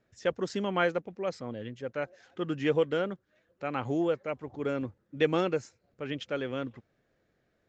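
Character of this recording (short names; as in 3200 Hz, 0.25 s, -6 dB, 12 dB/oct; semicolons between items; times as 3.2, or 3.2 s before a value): noise floor -75 dBFS; spectral tilt -4.5 dB/oct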